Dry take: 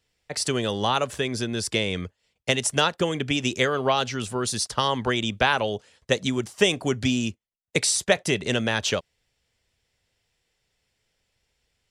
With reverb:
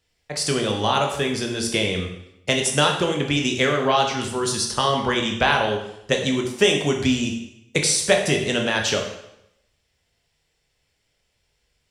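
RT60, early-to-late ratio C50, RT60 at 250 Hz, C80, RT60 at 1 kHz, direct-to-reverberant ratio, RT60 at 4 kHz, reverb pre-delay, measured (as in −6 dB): 0.80 s, 6.0 dB, 0.80 s, 8.5 dB, 0.80 s, 2.0 dB, 0.75 s, 6 ms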